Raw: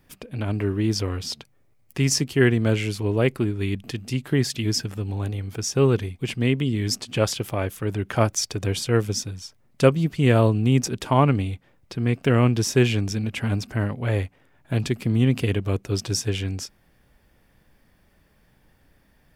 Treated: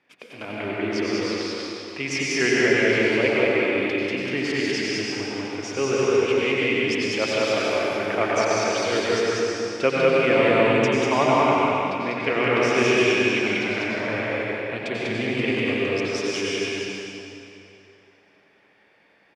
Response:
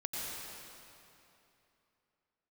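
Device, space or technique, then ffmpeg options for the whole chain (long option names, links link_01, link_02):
station announcement: -filter_complex "[0:a]highpass=350,lowpass=4100,equalizer=frequency=2300:width_type=o:width=0.46:gain=7.5,aecho=1:1:195.3|288.6:0.794|0.251[link_01];[1:a]atrim=start_sample=2205[link_02];[link_01][link_02]afir=irnorm=-1:irlink=0"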